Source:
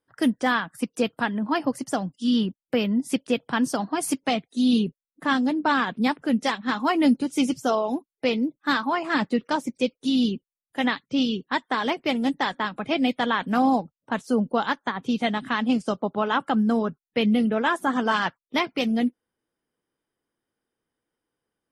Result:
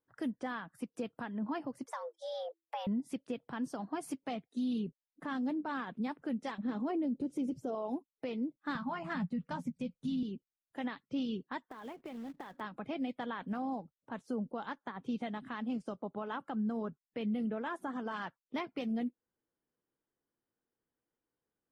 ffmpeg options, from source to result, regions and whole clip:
ffmpeg -i in.wav -filter_complex "[0:a]asettb=1/sr,asplit=3[link_01][link_02][link_03];[link_01]atrim=end=1.864[link_04];[link_02]atrim=start=1.86:end=2.87,asetpts=PTS-STARTPTS,afade=type=in:duration=0.004:curve=qsin,afade=type=out:start_time=1.006:duration=0.004:curve=qsin,equalizer=frequency=260:width=1.9:gain=-9.5,acompressor=threshold=-31dB:ratio=2:attack=3.2:release=140:knee=1:detection=peak,afreqshift=330[link_05];[link_03]atrim=start=2.866[link_06];[link_04][link_05]acrossfade=duration=0.004:curve1=hsin:curve2=qsin[link_07];[link_07][link_06]acrossfade=duration=0.004:curve1=qsin:curve2=hsin,asettb=1/sr,asplit=3[link_08][link_09][link_10];[link_08]atrim=end=6.584[link_11];[link_09]atrim=start=6.58:end=7.75,asetpts=PTS-STARTPTS,afade=type=in:duration=0.004:curve=qsin,afade=type=out:start_time=1.166:duration=0.004:curve=qsin,lowshelf=frequency=730:width_type=q:width=1.5:gain=9.5,acompressor=threshold=-18dB:ratio=2:attack=3.2:release=140:knee=1:detection=peak[link_12];[link_10]atrim=start=7.746[link_13];[link_11][link_12]acrossfade=duration=0.004:curve1=hsin:curve2=qsin[link_14];[link_14][link_13]acrossfade=duration=0.004:curve1=qsin:curve2=hsin,asettb=1/sr,asplit=3[link_15][link_16][link_17];[link_15]atrim=end=8.754[link_18];[link_16]atrim=start=8.75:end=10.23,asetpts=PTS-STARTPTS,afade=type=in:duration=0.004:curve=qsin,afade=type=out:start_time=1.476:duration=0.004:curve=qsin,lowshelf=frequency=240:width_type=q:width=3:gain=11.5,asplit=2[link_19][link_20];[link_20]adelay=12,volume=-6.5dB[link_21];[link_19][link_21]amix=inputs=2:normalize=0,atrim=end_sample=65268[link_22];[link_17]atrim=start=10.226[link_23];[link_18][link_22]acrossfade=duration=0.004:curve1=hsin:curve2=qsin[link_24];[link_24][link_23]acrossfade=duration=0.004:curve1=qsin:curve2=hsin,asettb=1/sr,asplit=3[link_25][link_26][link_27];[link_25]atrim=end=11.634[link_28];[link_26]atrim=start=11.63:end=12.61,asetpts=PTS-STARTPTS,afade=type=in:duration=0.004:curve=qsin,afade=type=out:start_time=0.976:duration=0.004:curve=qsin,aemphasis=mode=reproduction:type=50fm,acompressor=threshold=-34dB:ratio=10:attack=3.2:release=140:knee=1:detection=peak,acrusher=bits=3:mode=log:mix=0:aa=0.000001[link_29];[link_27]atrim=start=12.606[link_30];[link_28][link_29]acrossfade=duration=0.004:curve1=hsin:curve2=qsin[link_31];[link_31][link_30]acrossfade=duration=0.004:curve1=qsin:curve2=hsin,highshelf=frequency=2400:gain=-10.5,alimiter=limit=-22dB:level=0:latency=1:release=285,volume=-6.5dB" out.wav

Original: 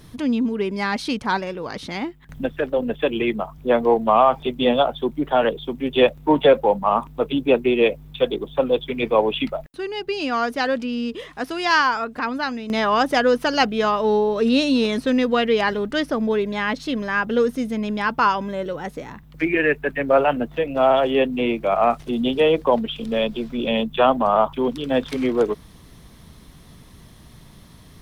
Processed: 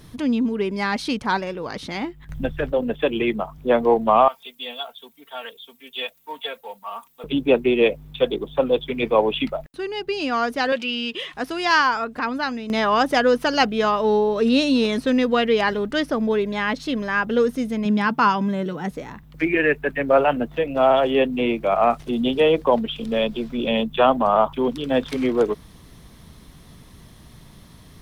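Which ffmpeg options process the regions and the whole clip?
ffmpeg -i in.wav -filter_complex "[0:a]asettb=1/sr,asplit=3[link_01][link_02][link_03];[link_01]atrim=end=1.904[link_04];[link_02]atrim=start=1.9:end=2.72,asetpts=PTS-STARTPTS,afade=type=in:duration=0.004:curve=qsin,afade=type=out:start_time=0.816:duration=0.004:curve=qsin,asubboost=boost=11.5:cutoff=160,acompressor=mode=upward:threshold=-38dB:ratio=2.5:attack=3.2:release=140:knee=2.83:detection=peak,asplit=2[link_05][link_06];[link_06]adelay=14,volume=-14dB[link_07];[link_05][link_07]amix=inputs=2:normalize=0,atrim=end_sample=36162[link_08];[link_03]atrim=start=2.716[link_09];[link_04][link_08]acrossfade=duration=0.004:curve1=hsin:curve2=qsin[link_10];[link_10][link_09]acrossfade=duration=0.004:curve1=qsin:curve2=hsin,asettb=1/sr,asplit=3[link_11][link_12][link_13];[link_11]atrim=end=4.284[link_14];[link_12]atrim=start=4.28:end=7.24,asetpts=PTS-STARTPTS,afade=type=in:duration=0.004:curve=qsin,afade=type=out:start_time=2.956:duration=0.004:curve=qsin,aderivative,aecho=1:1:4.4:0.93,atrim=end_sample=130536[link_15];[link_13]atrim=start=7.236[link_16];[link_14][link_15]acrossfade=duration=0.004:curve1=hsin:curve2=qsin[link_17];[link_17][link_16]acrossfade=duration=0.004:curve1=qsin:curve2=hsin,asettb=1/sr,asplit=3[link_18][link_19][link_20];[link_18]atrim=end=10.724[link_21];[link_19]atrim=start=10.72:end=11.34,asetpts=PTS-STARTPTS,afade=type=in:duration=0.004:curve=qsin,afade=type=out:start_time=0.616:duration=0.004:curve=qsin,highpass=frequency=320:poles=1,equalizer=frequency=2900:width_type=o:width=0.96:gain=11.5,aecho=1:1:5.5:0.35,atrim=end_sample=27342[link_22];[link_20]atrim=start=11.336[link_23];[link_21][link_22]acrossfade=duration=0.004:curve1=hsin:curve2=qsin[link_24];[link_24][link_23]acrossfade=duration=0.004:curve1=qsin:curve2=hsin,asettb=1/sr,asplit=3[link_25][link_26][link_27];[link_25]atrim=end=17.854[link_28];[link_26]atrim=start=17.85:end=18.91,asetpts=PTS-STARTPTS,afade=type=in:duration=0.004:curve=qsin,afade=type=out:start_time=1.056:duration=0.004:curve=qsin,lowshelf=frequency=120:width_type=q:width=3:gain=-14,bandreject=frequency=540:width=6.6[link_29];[link_27]atrim=start=18.906[link_30];[link_28][link_29]acrossfade=duration=0.004:curve1=hsin:curve2=qsin[link_31];[link_31][link_30]acrossfade=duration=0.004:curve1=qsin:curve2=hsin" out.wav

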